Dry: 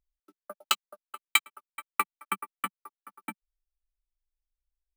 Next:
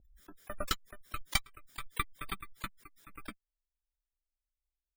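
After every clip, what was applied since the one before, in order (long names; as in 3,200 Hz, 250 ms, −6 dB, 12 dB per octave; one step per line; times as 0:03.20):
lower of the sound and its delayed copy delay 0.56 ms
gate on every frequency bin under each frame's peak −25 dB strong
background raised ahead of every attack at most 52 dB per second
level −5.5 dB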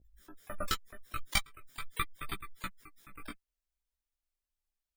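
multi-voice chorus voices 2, 0.43 Hz, delay 16 ms, depth 4.7 ms
level +3.5 dB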